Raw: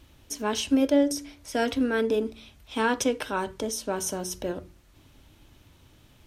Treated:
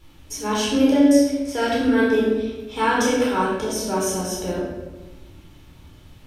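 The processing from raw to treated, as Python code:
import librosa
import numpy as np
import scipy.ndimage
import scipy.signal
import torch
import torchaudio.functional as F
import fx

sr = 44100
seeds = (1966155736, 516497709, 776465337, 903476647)

y = fx.room_shoebox(x, sr, seeds[0], volume_m3=670.0, walls='mixed', distance_m=4.2)
y = y * librosa.db_to_amplitude(-3.0)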